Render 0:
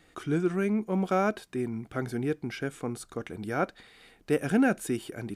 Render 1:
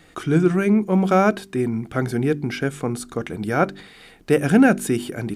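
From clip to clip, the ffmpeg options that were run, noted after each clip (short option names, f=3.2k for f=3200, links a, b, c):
-af "equalizer=f=160:t=o:w=0.66:g=4,bandreject=f=48.81:t=h:w=4,bandreject=f=97.62:t=h:w=4,bandreject=f=146.43:t=h:w=4,bandreject=f=195.24:t=h:w=4,bandreject=f=244.05:t=h:w=4,bandreject=f=292.86:t=h:w=4,bandreject=f=341.67:t=h:w=4,bandreject=f=390.48:t=h:w=4,volume=9dB"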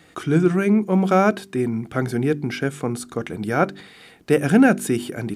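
-af "highpass=72"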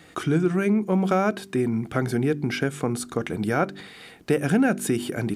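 -af "acompressor=threshold=-22dB:ratio=2.5,volume=1.5dB"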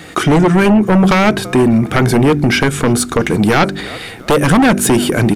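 -filter_complex "[0:a]asplit=4[a][b][c][d];[b]adelay=335,afreqshift=-54,volume=-23.5dB[e];[c]adelay=670,afreqshift=-108,volume=-30.1dB[f];[d]adelay=1005,afreqshift=-162,volume=-36.6dB[g];[a][e][f][g]amix=inputs=4:normalize=0,aeval=exprs='0.376*sin(PI/2*3.16*val(0)/0.376)':c=same,volume=2.5dB"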